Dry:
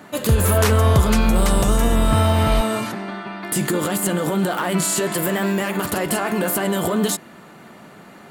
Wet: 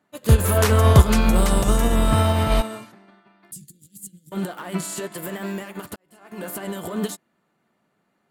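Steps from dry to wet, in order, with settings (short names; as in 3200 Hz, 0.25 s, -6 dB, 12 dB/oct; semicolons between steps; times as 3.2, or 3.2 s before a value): 3.51–4.32 Chebyshev band-stop 130–6300 Hz, order 2; 5.96–6.47 fade in; upward expander 2.5:1, over -32 dBFS; gain +5 dB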